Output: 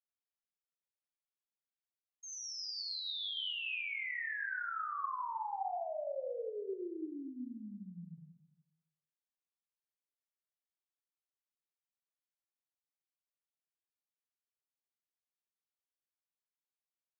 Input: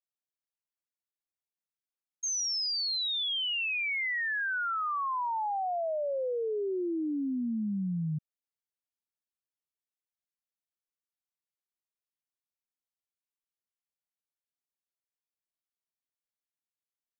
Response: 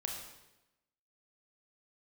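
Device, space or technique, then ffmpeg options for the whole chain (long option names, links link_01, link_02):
supermarket ceiling speaker: -filter_complex "[0:a]highpass=290,lowpass=5000[link_01];[1:a]atrim=start_sample=2205[link_02];[link_01][link_02]afir=irnorm=-1:irlink=0,volume=-8.5dB"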